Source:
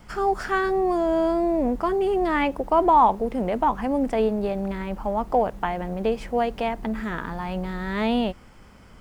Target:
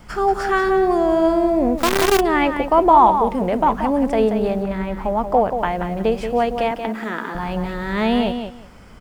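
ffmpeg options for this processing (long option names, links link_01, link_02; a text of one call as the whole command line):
ffmpeg -i in.wav -filter_complex "[0:a]asettb=1/sr,asplit=3[link_01][link_02][link_03];[link_01]atrim=end=6.714[link_04];[link_02]atrim=start=6.71:end=7.35,asetpts=PTS-STARTPTS,afade=type=in:duration=0.004:curve=qsin,afade=type=out:start_time=0.636:duration=0.004:curve=qsin,highpass=frequency=220:width=0.5412,highpass=frequency=220:width=1.3066[link_05];[link_03]atrim=start=7.346[link_06];[link_04][link_05]acrossfade=duration=0.004:curve1=hsin:curve2=qsin[link_07];[link_07][link_06]acrossfade=duration=0.004:curve1=qsin:curve2=hsin,aecho=1:1:181|362|543:0.398|0.0677|0.0115,asplit=3[link_08][link_09][link_10];[link_08]afade=type=out:start_time=1.77:duration=0.02[link_11];[link_09]acrusher=bits=4:dc=4:mix=0:aa=0.000001,afade=type=in:start_time=1.77:duration=0.02,afade=type=out:start_time=2.19:duration=0.02[link_12];[link_10]afade=type=in:start_time=2.19:duration=0.02[link_13];[link_11][link_12][link_13]amix=inputs=3:normalize=0,asplit=3[link_14][link_15][link_16];[link_14]afade=type=out:start_time=4.62:duration=0.02[link_17];[link_15]adynamicequalizer=threshold=0.00794:dfrequency=2900:dqfactor=0.7:tfrequency=2900:tqfactor=0.7:attack=5:release=100:ratio=0.375:range=2:mode=cutabove:tftype=highshelf,afade=type=in:start_time=4.62:duration=0.02,afade=type=out:start_time=5.57:duration=0.02[link_18];[link_16]afade=type=in:start_time=5.57:duration=0.02[link_19];[link_17][link_18][link_19]amix=inputs=3:normalize=0,volume=4.5dB" out.wav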